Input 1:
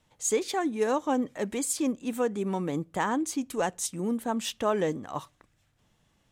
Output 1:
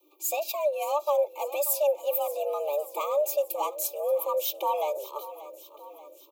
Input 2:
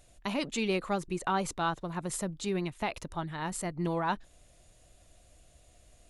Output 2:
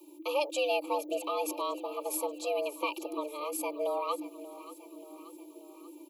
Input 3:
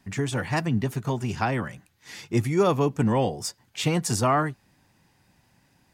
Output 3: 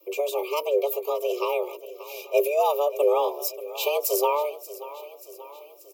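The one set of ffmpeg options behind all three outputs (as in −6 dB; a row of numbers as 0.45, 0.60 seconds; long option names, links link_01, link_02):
-filter_complex "[0:a]bass=frequency=250:gain=9,treble=frequency=4000:gain=-1,acrossover=split=240[link_01][link_02];[link_02]aexciter=amount=12.9:drive=7.9:freq=12000[link_03];[link_01][link_03]amix=inputs=2:normalize=0,asuperstop=centerf=1400:order=12:qfactor=1.2,equalizer=frequency=2000:width=4.5:gain=10.5,aecho=1:1:3.3:0.68,afreqshift=290,asplit=2[link_04][link_05];[link_05]aecho=0:1:583|1166|1749|2332|2915:0.158|0.0903|0.0515|0.0294|0.0167[link_06];[link_04][link_06]amix=inputs=2:normalize=0,volume=-3.5dB"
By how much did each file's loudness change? +1.5, 0.0, +0.5 LU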